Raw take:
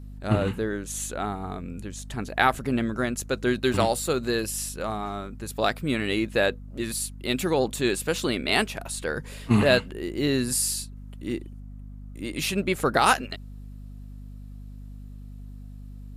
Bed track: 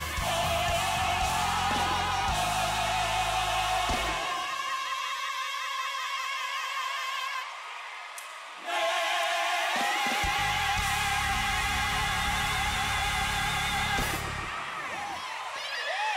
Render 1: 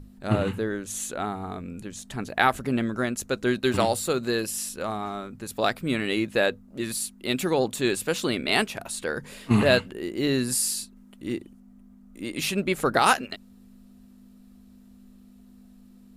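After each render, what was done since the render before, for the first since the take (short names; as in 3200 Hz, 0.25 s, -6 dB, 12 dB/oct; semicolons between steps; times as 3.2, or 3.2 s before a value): notches 50/100/150 Hz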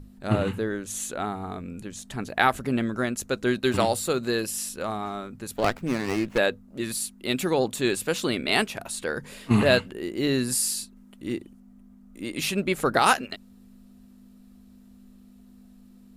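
5.56–6.38 running maximum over 9 samples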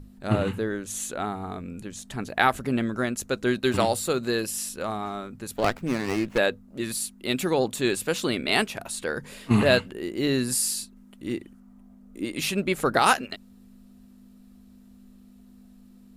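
11.37–12.24 bell 2300 Hz -> 330 Hz +8.5 dB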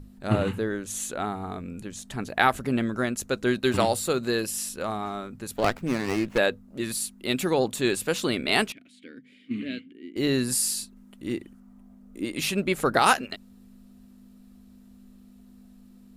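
8.72–10.16 vowel filter i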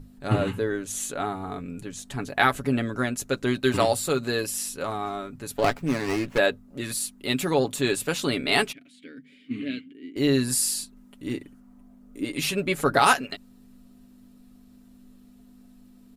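comb 7.1 ms, depth 50%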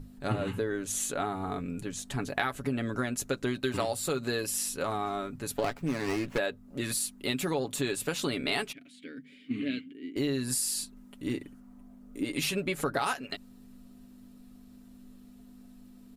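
compressor 6:1, threshold -27 dBFS, peak gain reduction 13 dB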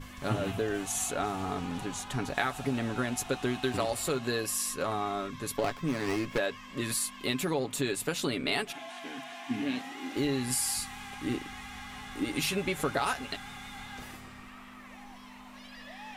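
add bed track -16 dB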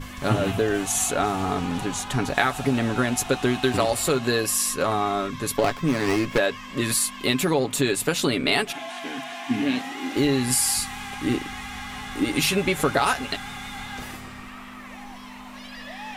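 gain +8.5 dB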